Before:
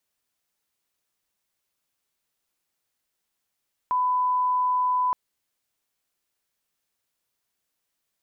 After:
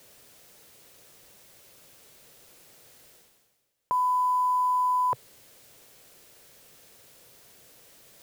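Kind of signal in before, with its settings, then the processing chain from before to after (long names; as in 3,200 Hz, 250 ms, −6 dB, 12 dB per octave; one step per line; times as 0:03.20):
line-up tone −20 dBFS 1.22 s
one scale factor per block 5 bits
octave-band graphic EQ 125/500/1,000 Hz +7/+9/−3 dB
reversed playback
upward compression, threshold −34 dBFS
reversed playback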